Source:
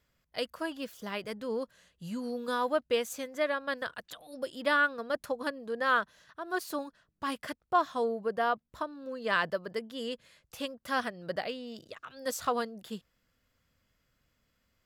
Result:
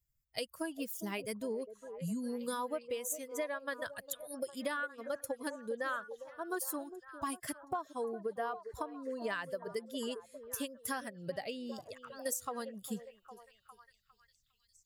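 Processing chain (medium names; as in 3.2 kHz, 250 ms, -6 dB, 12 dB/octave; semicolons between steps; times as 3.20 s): expander on every frequency bin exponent 1.5; resonant high shelf 5.8 kHz +11.5 dB, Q 1.5; compression 10:1, threshold -41 dBFS, peak gain reduction 19.5 dB; repeats whose band climbs or falls 405 ms, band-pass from 460 Hz, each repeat 0.7 oct, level -8.5 dB; trim +6.5 dB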